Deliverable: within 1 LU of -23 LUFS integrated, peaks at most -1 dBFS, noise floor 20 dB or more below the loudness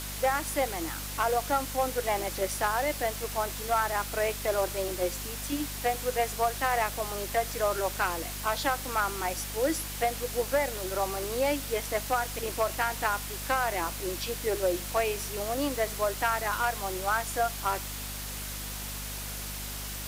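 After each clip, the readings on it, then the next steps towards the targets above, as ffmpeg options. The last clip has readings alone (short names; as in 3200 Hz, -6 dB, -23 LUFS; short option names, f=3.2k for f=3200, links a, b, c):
hum 50 Hz; harmonics up to 250 Hz; hum level -39 dBFS; noise floor -37 dBFS; noise floor target -50 dBFS; loudness -30.0 LUFS; peak -15.0 dBFS; loudness target -23.0 LUFS
-> -af "bandreject=f=50:t=h:w=6,bandreject=f=100:t=h:w=6,bandreject=f=150:t=h:w=6,bandreject=f=200:t=h:w=6,bandreject=f=250:t=h:w=6"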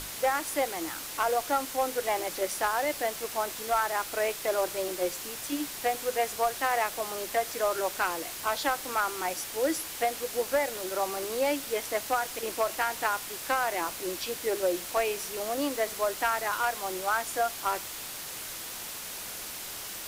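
hum none; noise floor -39 dBFS; noise floor target -50 dBFS
-> -af "afftdn=nr=11:nf=-39"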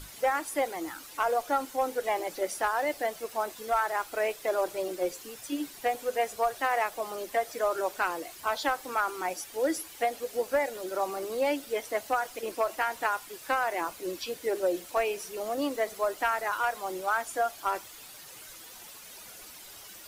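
noise floor -48 dBFS; noise floor target -51 dBFS
-> -af "afftdn=nr=6:nf=-48"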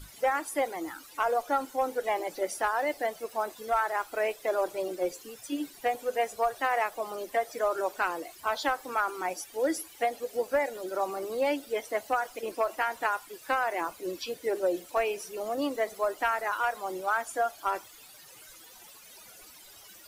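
noise floor -52 dBFS; loudness -31.0 LUFS; peak -16.0 dBFS; loudness target -23.0 LUFS
-> -af "volume=8dB"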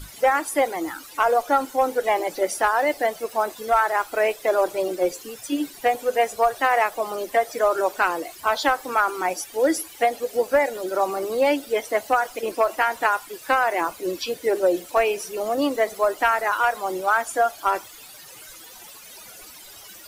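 loudness -23.0 LUFS; peak -8.0 dBFS; noise floor -44 dBFS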